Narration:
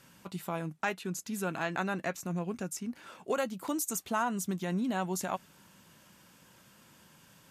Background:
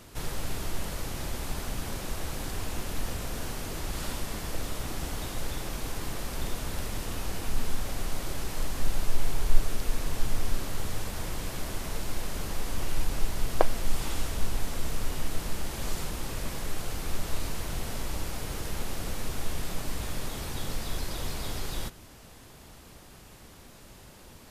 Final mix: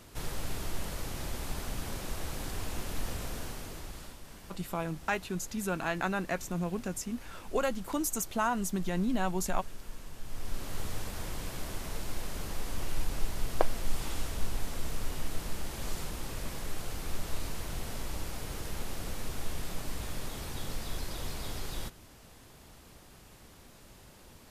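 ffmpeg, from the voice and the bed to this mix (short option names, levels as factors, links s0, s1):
-filter_complex "[0:a]adelay=4250,volume=1.12[s0];[1:a]volume=2.66,afade=t=out:st=3.24:d=0.93:silence=0.237137,afade=t=in:st=10.23:d=0.56:silence=0.266073[s1];[s0][s1]amix=inputs=2:normalize=0"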